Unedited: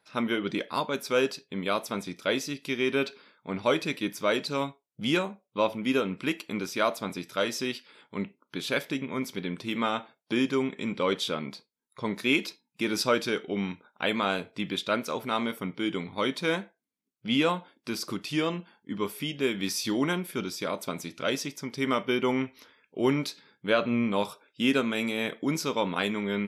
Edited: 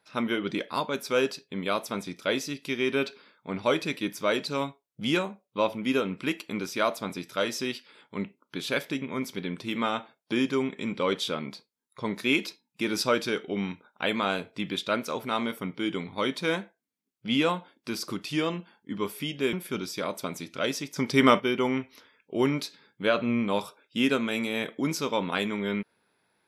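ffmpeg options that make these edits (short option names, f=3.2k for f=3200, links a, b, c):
-filter_complex "[0:a]asplit=4[a][b][c][d];[a]atrim=end=19.532[e];[b]atrim=start=20.168:end=21.602[f];[c]atrim=start=21.598:end=22.042,asetpts=PTS-STARTPTS,volume=8dB[g];[d]atrim=start=22.038[h];[e][f]acrossfade=d=0.004:c1=hsin:c2=hsin[i];[i][g]acrossfade=d=0.004:c1=hsin:c2=hsin[j];[j][h]acrossfade=d=0.004:c1=hsin:c2=hsin"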